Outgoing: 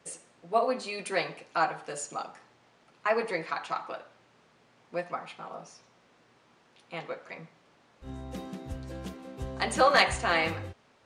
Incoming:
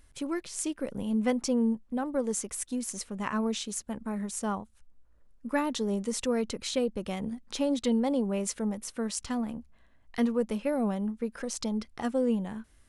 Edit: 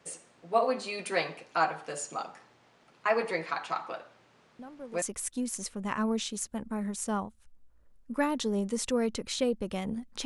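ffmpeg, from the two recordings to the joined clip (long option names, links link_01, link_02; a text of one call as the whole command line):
ffmpeg -i cue0.wav -i cue1.wav -filter_complex "[1:a]asplit=2[link_01][link_02];[0:a]apad=whole_dur=10.25,atrim=end=10.25,atrim=end=5.022[link_03];[link_02]atrim=start=2.368:end=7.6[link_04];[link_01]atrim=start=1.94:end=2.37,asetpts=PTS-STARTPTS,volume=-14.5dB,afade=type=in:duration=0.004:curve=hsin,afade=type=out:start_time=0.426:duration=0.004:curve=hsin,adelay=4590[link_05];[link_03][link_04]acrossfade=duration=0.004:curve1=hsin:curve2=hsin[link_06];[link_06][link_05]amix=inputs=2:normalize=0" out.wav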